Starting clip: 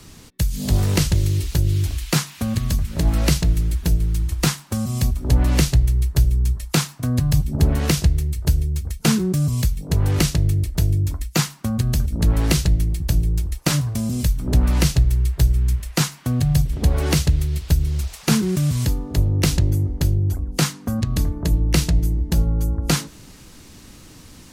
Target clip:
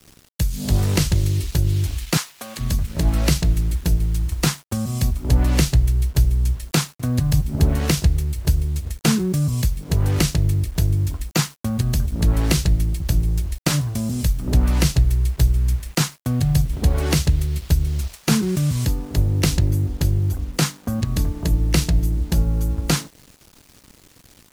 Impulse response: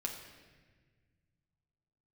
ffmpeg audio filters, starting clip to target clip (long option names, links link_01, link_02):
-filter_complex "[0:a]aeval=exprs='sgn(val(0))*max(abs(val(0))-0.00668,0)':channel_layout=same,asettb=1/sr,asplit=3[link_01][link_02][link_03];[link_01]atrim=end=2.174[link_04];[link_02]atrim=start=2.17:end=2.59,asetpts=PTS-STARTPTS,afade=type=in:duration=0.004:curve=qsin,afade=type=out:start_time=0.416:duration=0.004:curve=qsin,highpass=570[link_05];[link_03]atrim=start=2.586[link_06];[link_04][link_05]acrossfade=duration=0.004:curve1=hsin:curve2=qsin[link_07];[link_07][link_06]acrossfade=duration=0.004:curve1=qsin:curve2=hsin,acrusher=bits=7:mix=0:aa=0.000001"